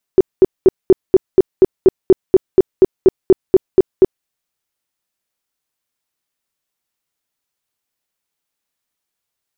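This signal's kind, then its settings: tone bursts 377 Hz, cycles 10, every 0.24 s, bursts 17, -2.5 dBFS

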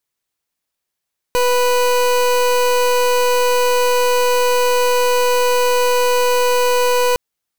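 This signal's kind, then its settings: pulse 493 Hz, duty 28% -14.5 dBFS 5.81 s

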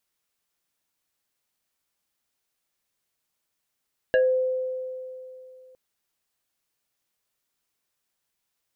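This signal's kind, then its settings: FM tone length 1.61 s, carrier 514 Hz, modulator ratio 2.22, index 1.1, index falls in 0.26 s exponential, decay 2.86 s, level -15.5 dB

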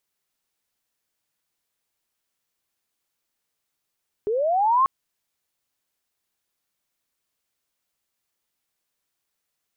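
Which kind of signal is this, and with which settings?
chirp linear 400 Hz -> 1100 Hz -21 dBFS -> -14.5 dBFS 0.59 s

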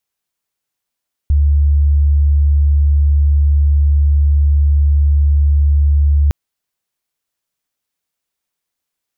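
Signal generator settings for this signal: tone sine 72.4 Hz -8 dBFS 5.01 s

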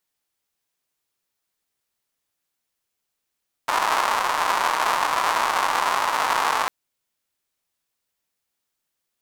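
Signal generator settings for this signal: rain from filtered ticks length 3.00 s, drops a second 270, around 1000 Hz, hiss -28.5 dB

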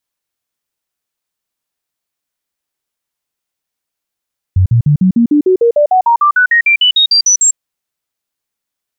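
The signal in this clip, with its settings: stepped sine 92.9 Hz up, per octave 3, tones 20, 0.10 s, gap 0.05 s -5.5 dBFS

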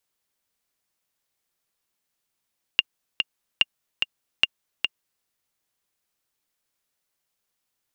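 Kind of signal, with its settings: metronome 146 bpm, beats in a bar 2, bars 3, 2810 Hz, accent 5 dB -3.5 dBFS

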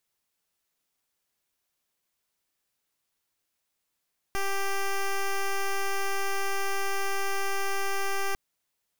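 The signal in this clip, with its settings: pulse 393 Hz, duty 10% -27 dBFS 4.00 s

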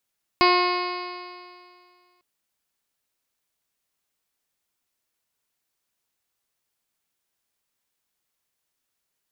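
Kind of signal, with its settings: stretched partials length 1.80 s, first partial 357 Hz, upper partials -3.5/2.5/-13/-13/-4.5/-7.5/-13.5/-18/-17.5/-11/-8/-8.5 dB, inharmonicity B 0.00073, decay 2.14 s, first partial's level -19 dB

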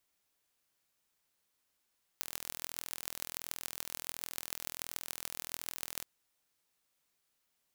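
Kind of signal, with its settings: pulse train 41.4/s, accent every 6, -8.5 dBFS 3.82 s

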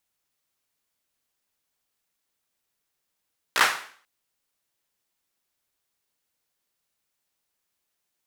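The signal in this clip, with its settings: hand clap length 0.49 s, apart 16 ms, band 1400 Hz, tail 0.49 s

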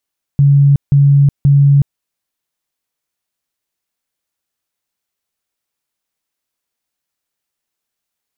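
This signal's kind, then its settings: tone bursts 141 Hz, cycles 52, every 0.53 s, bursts 3, -5 dBFS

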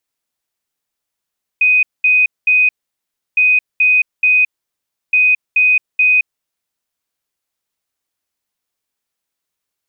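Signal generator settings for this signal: beep pattern sine 2500 Hz, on 0.22 s, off 0.21 s, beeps 3, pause 0.68 s, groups 3, -8 dBFS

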